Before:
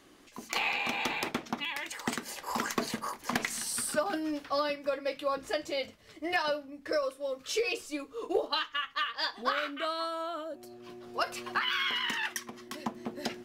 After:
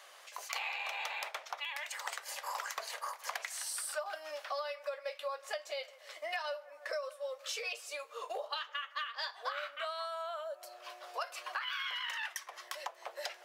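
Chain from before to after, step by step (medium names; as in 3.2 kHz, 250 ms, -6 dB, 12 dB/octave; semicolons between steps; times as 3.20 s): elliptic high-pass 560 Hz, stop band 60 dB; on a send: bucket-brigade echo 159 ms, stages 2048, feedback 49%, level -24 dB; on the sum: compression 3:1, threshold -47 dBFS, peak gain reduction 16.5 dB; trim +6.5 dB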